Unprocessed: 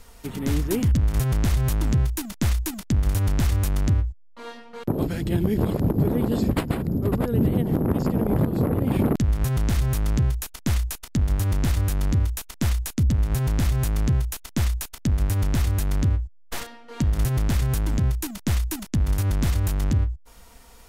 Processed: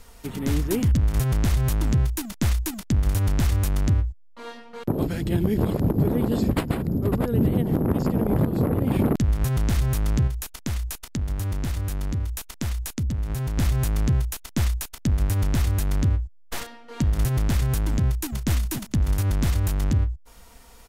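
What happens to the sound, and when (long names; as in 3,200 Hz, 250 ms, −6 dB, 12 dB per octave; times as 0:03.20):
0:10.27–0:13.57: downward compressor 2 to 1, threshold −27 dBFS
0:18.04–0:18.50: delay throw 280 ms, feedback 20%, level −7.5 dB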